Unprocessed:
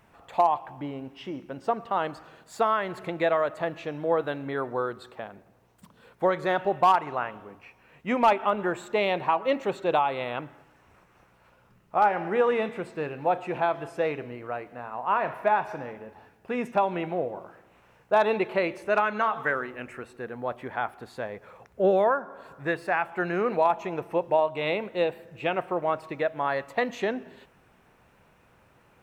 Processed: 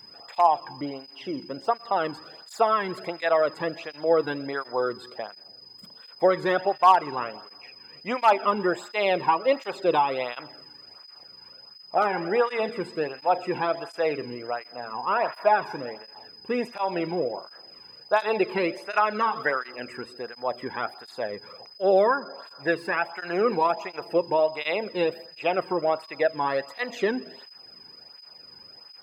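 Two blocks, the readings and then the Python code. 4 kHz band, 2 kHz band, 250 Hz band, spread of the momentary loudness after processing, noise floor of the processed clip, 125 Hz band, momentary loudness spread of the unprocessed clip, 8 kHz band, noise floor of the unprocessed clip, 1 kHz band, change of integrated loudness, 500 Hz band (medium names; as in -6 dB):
+5.0 dB, +1.0 dB, +1.0 dB, 22 LU, -51 dBFS, -2.5 dB, 14 LU, no reading, -61 dBFS, +1.5 dB, +1.5 dB, +1.5 dB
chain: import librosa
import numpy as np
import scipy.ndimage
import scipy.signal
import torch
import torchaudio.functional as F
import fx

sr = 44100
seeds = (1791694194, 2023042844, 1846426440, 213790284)

y = x + 10.0 ** (-47.0 / 20.0) * np.sin(2.0 * np.pi * 5000.0 * np.arange(len(x)) / sr)
y = fx.flanger_cancel(y, sr, hz=1.4, depth_ms=1.7)
y = y * librosa.db_to_amplitude(4.5)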